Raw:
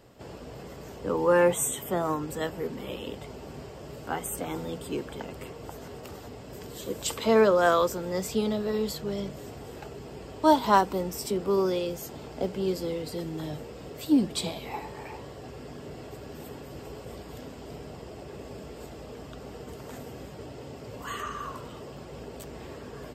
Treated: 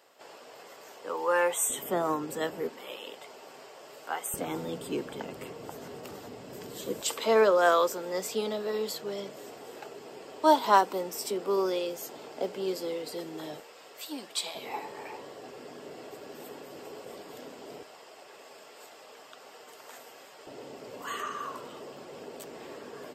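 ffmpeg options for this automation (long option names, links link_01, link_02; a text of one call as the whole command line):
ffmpeg -i in.wav -af "asetnsamples=nb_out_samples=441:pad=0,asendcmd='1.7 highpass f 230;2.69 highpass f 630;4.34 highpass f 160;7.01 highpass f 370;13.6 highpass f 850;14.55 highpass f 320;17.83 highpass f 800;20.47 highpass f 290',highpass=670" out.wav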